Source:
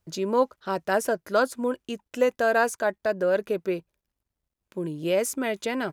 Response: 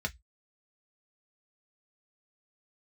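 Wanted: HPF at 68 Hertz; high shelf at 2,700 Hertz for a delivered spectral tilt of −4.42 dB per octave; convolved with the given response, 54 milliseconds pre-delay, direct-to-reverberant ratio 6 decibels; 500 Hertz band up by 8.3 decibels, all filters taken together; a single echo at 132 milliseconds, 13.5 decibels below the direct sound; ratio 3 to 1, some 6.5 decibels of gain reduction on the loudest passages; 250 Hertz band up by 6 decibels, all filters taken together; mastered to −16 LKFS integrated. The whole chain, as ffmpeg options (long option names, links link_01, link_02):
-filter_complex "[0:a]highpass=68,equalizer=frequency=250:width_type=o:gain=4.5,equalizer=frequency=500:width_type=o:gain=8.5,highshelf=frequency=2700:gain=6.5,acompressor=threshold=-16dB:ratio=3,aecho=1:1:132:0.211,asplit=2[link_01][link_02];[1:a]atrim=start_sample=2205,adelay=54[link_03];[link_02][link_03]afir=irnorm=-1:irlink=0,volume=-10dB[link_04];[link_01][link_04]amix=inputs=2:normalize=0,volume=5dB"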